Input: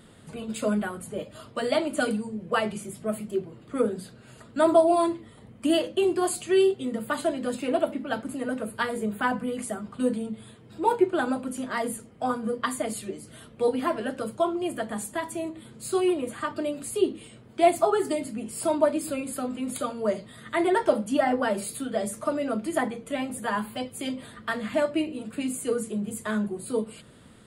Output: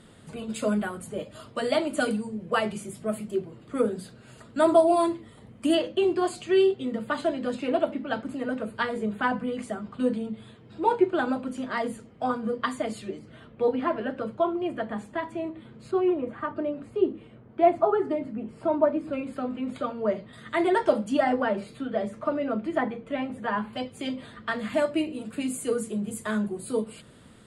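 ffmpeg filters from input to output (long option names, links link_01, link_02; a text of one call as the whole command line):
ffmpeg -i in.wav -af "asetnsamples=nb_out_samples=441:pad=0,asendcmd='5.75 lowpass f 5100;13.19 lowpass f 2700;15.91 lowpass f 1600;19.13 lowpass f 2700;20.33 lowpass f 6900;21.42 lowpass f 2700;23.73 lowpass f 5500;24.59 lowpass f 12000',lowpass=11000" out.wav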